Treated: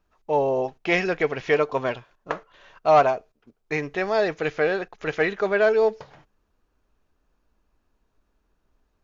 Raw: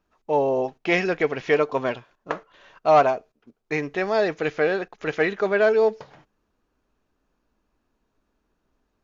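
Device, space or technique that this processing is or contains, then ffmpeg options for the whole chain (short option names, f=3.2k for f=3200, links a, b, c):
low shelf boost with a cut just above: -af "lowshelf=f=76:g=7.5,equalizer=f=250:t=o:w=1.1:g=-3.5"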